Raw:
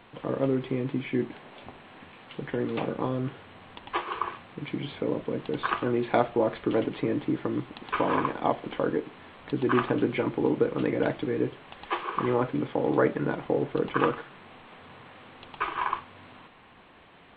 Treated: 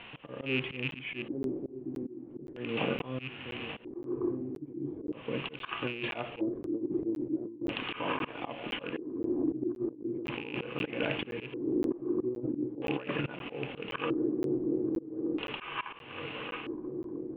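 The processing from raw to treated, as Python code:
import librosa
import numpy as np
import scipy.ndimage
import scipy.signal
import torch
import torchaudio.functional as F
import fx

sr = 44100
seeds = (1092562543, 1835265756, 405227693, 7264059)

p1 = fx.rattle_buzz(x, sr, strikes_db=-29.0, level_db=-22.0)
p2 = p1 + fx.echo_swing(p1, sr, ms=1226, ratio=3, feedback_pct=62, wet_db=-16, dry=0)
p3 = fx.filter_lfo_lowpass(p2, sr, shape='square', hz=0.39, low_hz=340.0, high_hz=2800.0, q=5.6)
p4 = fx.auto_swell(p3, sr, attack_ms=335.0)
p5 = fx.over_compress(p4, sr, threshold_db=-29.0, ratio=-0.5)
p6 = fx.hpss(p5, sr, part='percussive', gain_db=-5)
y = fx.buffer_crackle(p6, sr, first_s=0.91, period_s=0.52, block=512, kind='zero')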